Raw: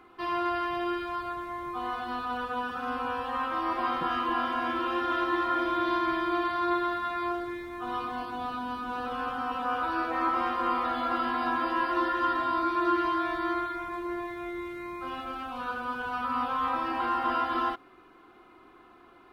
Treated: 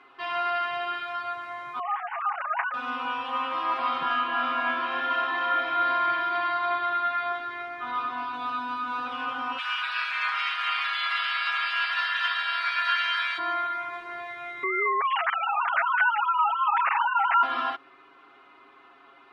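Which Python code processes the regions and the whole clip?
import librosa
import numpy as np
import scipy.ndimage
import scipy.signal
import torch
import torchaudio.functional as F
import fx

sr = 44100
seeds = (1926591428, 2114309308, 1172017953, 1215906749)

y = fx.chain(x, sr, fx.sine_speech(),
    fx.lowpass(hz=2500.0, slope=24), at=(1.79, 2.74))
y = fx.chain(y, sr, fx.air_absorb(metres=70.0),
    fx.echo_single(ms=295, db=-6.5), at=(4.13, 8.34))
y = fx.spec_clip(y, sr, under_db=18, at=(9.57, 13.37), fade=0.02)
y = fx.highpass(y, sr, hz=1200.0, slope=24, at=(9.57, 13.37), fade=0.02)
y = fx.chain(y, sr, fx.sine_speech(),
    fx.env_flatten(amount_pct=70), at=(14.63, 17.43))
y = scipy.signal.sosfilt(scipy.signal.butter(2, 2800.0, 'lowpass', fs=sr, output='sos'), y)
y = fx.tilt_eq(y, sr, slope=4.0)
y = y + 0.95 * np.pad(y, (int(7.3 * sr / 1000.0), 0))[:len(y)]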